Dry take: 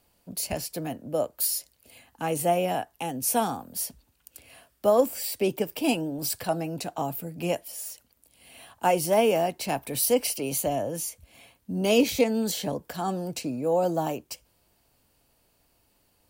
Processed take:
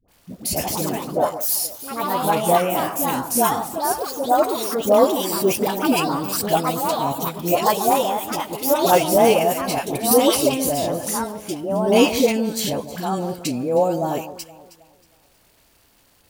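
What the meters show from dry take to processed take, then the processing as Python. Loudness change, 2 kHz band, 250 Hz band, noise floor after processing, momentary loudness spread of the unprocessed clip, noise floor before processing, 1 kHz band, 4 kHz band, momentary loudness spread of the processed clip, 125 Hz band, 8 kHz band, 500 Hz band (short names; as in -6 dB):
+7.0 dB, +7.5 dB, +7.5 dB, -58 dBFS, 12 LU, -68 dBFS, +10.5 dB, +8.0 dB, 9 LU, +5.5 dB, +6.5 dB, +7.0 dB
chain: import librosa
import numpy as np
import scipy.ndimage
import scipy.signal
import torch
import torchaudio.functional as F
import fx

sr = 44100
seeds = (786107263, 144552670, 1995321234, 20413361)

p1 = fx.echo_alternate(x, sr, ms=158, hz=1200.0, feedback_pct=56, wet_db=-11.5)
p2 = fx.dmg_crackle(p1, sr, seeds[0], per_s=400.0, level_db=-51.0)
p3 = fx.echo_pitch(p2, sr, ms=166, semitones=3, count=3, db_per_echo=-3.0)
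p4 = fx.level_steps(p3, sr, step_db=11)
p5 = p3 + F.gain(torch.from_numpy(p4), 3.0).numpy()
y = fx.dispersion(p5, sr, late='highs', ms=84.0, hz=700.0)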